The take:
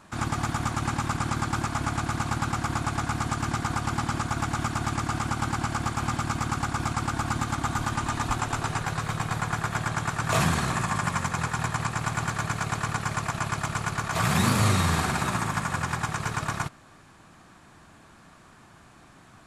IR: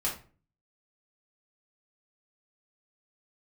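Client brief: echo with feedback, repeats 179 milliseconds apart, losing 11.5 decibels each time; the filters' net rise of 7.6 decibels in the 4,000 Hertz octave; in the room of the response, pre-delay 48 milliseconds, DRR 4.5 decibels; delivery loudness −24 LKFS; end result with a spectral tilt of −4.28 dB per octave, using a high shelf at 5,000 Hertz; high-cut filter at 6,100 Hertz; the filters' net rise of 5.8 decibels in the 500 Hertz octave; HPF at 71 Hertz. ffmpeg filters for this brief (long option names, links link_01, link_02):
-filter_complex "[0:a]highpass=71,lowpass=6100,equalizer=frequency=500:width_type=o:gain=8,equalizer=frequency=4000:width_type=o:gain=8,highshelf=frequency=5000:gain=4.5,aecho=1:1:179|358|537:0.266|0.0718|0.0194,asplit=2[link_01][link_02];[1:a]atrim=start_sample=2205,adelay=48[link_03];[link_02][link_03]afir=irnorm=-1:irlink=0,volume=-10.5dB[link_04];[link_01][link_04]amix=inputs=2:normalize=0"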